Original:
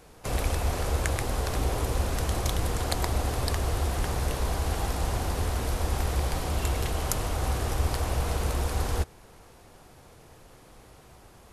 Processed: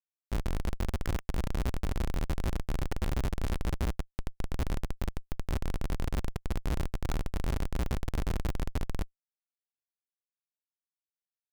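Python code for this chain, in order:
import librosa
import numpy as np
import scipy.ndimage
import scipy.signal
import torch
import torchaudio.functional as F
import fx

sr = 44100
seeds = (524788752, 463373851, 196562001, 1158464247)

y = scipy.signal.sosfilt(scipy.signal.bessel(2, 7400.0, 'lowpass', norm='mag', fs=sr, output='sos'), x)
y = fx.echo_filtered(y, sr, ms=203, feedback_pct=71, hz=2200.0, wet_db=-9.5)
y = fx.schmitt(y, sr, flips_db=-20.5)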